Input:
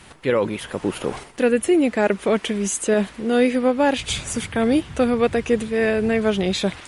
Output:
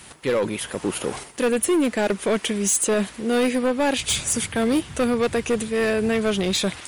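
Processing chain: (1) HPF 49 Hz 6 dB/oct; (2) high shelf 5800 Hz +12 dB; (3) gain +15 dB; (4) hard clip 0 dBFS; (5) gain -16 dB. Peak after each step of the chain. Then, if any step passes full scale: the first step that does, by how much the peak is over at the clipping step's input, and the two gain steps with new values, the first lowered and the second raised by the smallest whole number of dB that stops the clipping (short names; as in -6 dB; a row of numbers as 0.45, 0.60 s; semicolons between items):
-6.0, -5.5, +9.5, 0.0, -16.0 dBFS; step 3, 9.5 dB; step 3 +5 dB, step 5 -6 dB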